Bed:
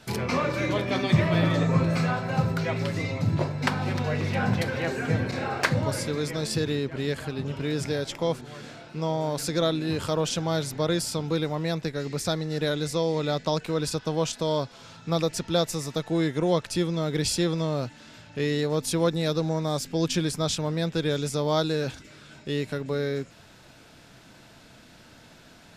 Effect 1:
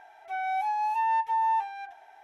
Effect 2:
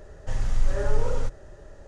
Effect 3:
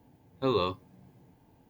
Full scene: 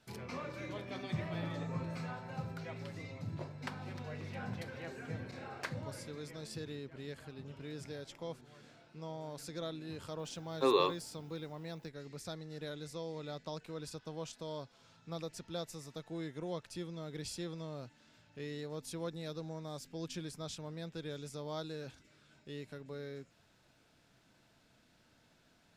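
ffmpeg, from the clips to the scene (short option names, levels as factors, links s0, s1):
-filter_complex "[0:a]volume=0.141[s0];[1:a]acompressor=threshold=0.00794:ratio=6:attack=3.2:release=140:knee=1:detection=peak[s1];[3:a]highpass=f=290:w=0.5412,highpass=f=290:w=1.3066[s2];[s1]atrim=end=2.23,asetpts=PTS-STARTPTS,volume=0.178,afade=t=in:d=0.004:c=hsin,afade=t=out:st=2.226:d=0.004:c=hsin,adelay=730[s3];[s2]atrim=end=1.69,asetpts=PTS-STARTPTS,volume=0.944,afade=t=in:d=0.004:c=hsin,afade=t=out:st=1.686:d=0.004:c=hsin,adelay=10190[s4];[s0][s3][s4]amix=inputs=3:normalize=0"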